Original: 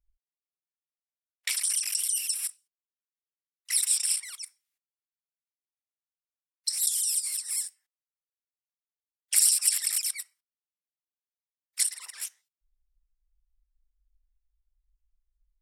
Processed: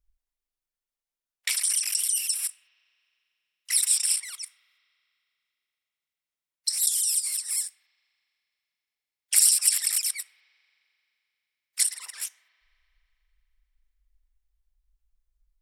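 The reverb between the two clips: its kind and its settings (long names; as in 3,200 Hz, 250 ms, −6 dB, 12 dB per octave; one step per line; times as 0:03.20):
spring reverb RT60 3.2 s, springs 38 ms, chirp 80 ms, DRR 18.5 dB
level +2.5 dB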